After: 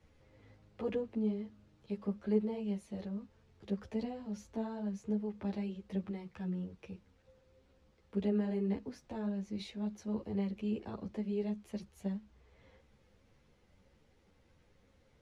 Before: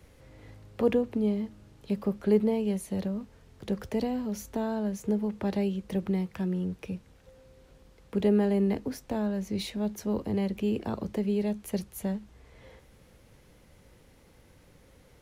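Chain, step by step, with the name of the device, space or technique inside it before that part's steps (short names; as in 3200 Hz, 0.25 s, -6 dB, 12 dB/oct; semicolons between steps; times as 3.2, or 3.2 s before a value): string-machine ensemble chorus (ensemble effect; LPF 6200 Hz 12 dB/oct); gain -7 dB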